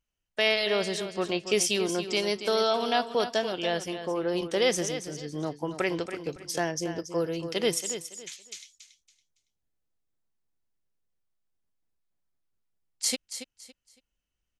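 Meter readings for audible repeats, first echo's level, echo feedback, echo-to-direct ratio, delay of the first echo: 3, -10.5 dB, 27%, -10.0 dB, 280 ms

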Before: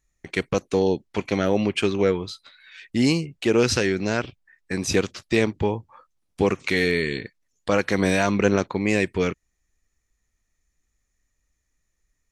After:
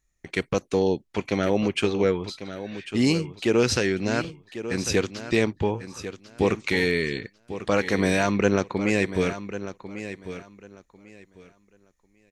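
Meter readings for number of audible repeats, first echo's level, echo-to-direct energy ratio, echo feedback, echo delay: 2, -12.0 dB, -12.0 dB, 21%, 1096 ms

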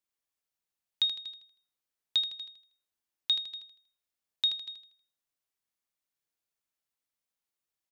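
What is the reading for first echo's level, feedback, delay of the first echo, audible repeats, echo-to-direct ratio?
-7.0 dB, 38%, 79 ms, 4, -6.5 dB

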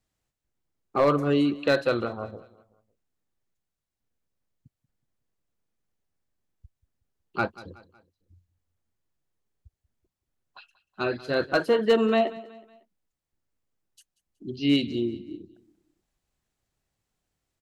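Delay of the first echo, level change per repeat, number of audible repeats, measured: 185 ms, -7.5 dB, 3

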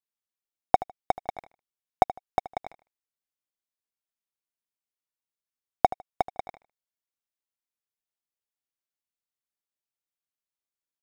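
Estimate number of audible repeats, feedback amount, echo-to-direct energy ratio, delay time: 2, 23%, -16.5 dB, 77 ms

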